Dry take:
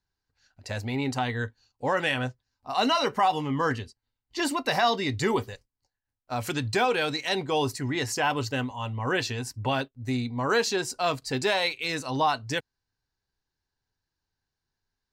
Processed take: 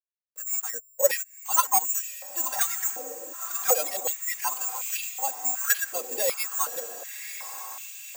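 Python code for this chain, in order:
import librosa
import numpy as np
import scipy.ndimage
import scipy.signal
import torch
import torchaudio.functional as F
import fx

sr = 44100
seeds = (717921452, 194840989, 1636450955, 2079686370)

p1 = fx.bin_expand(x, sr, power=1.5)
p2 = scipy.signal.sosfilt(scipy.signal.butter(2, 4200.0, 'lowpass', fs=sr, output='sos'), p1)
p3 = fx.hpss(p2, sr, part='percussive', gain_db=-9)
p4 = p3 + 0.92 * np.pad(p3, (int(3.7 * sr / 1000.0), 0))[:len(p3)]
p5 = fx.dynamic_eq(p4, sr, hz=2300.0, q=1.7, threshold_db=-46.0, ratio=4.0, max_db=3)
p6 = fx.level_steps(p5, sr, step_db=23)
p7 = p5 + (p6 * 10.0 ** (0.5 / 20.0))
p8 = 10.0 ** (-17.0 / 20.0) * np.tanh(p7 / 10.0 ** (-17.0 / 20.0))
p9 = fx.stretch_vocoder(p8, sr, factor=0.54)
p10 = fx.backlash(p9, sr, play_db=-43.0)
p11 = (np.kron(p10[::6], np.eye(6)[0]) * 6)[:len(p10)]
p12 = p11 + fx.echo_diffused(p11, sr, ms=1083, feedback_pct=59, wet_db=-10, dry=0)
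p13 = fx.filter_held_highpass(p12, sr, hz=2.7, low_hz=460.0, high_hz=2600.0)
y = p13 * 10.0 ** (-6.5 / 20.0)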